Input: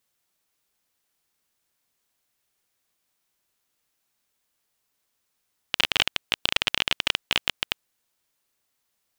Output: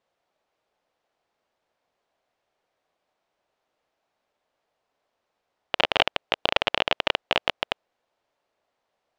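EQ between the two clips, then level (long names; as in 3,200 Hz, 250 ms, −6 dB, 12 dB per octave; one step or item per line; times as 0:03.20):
low-pass filter 3,900 Hz 12 dB per octave
parametric band 630 Hz +14.5 dB 1.6 octaves
−1.5 dB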